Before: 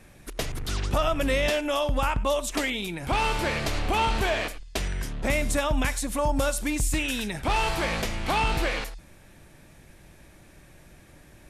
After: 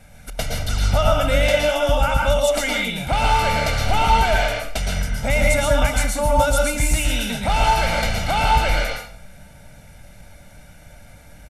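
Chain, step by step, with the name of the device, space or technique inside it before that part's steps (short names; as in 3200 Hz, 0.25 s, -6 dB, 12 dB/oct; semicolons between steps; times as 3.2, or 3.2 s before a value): microphone above a desk (comb 1.4 ms, depth 78%; reverb RT60 0.55 s, pre-delay 0.11 s, DRR -0.5 dB); gain +1.5 dB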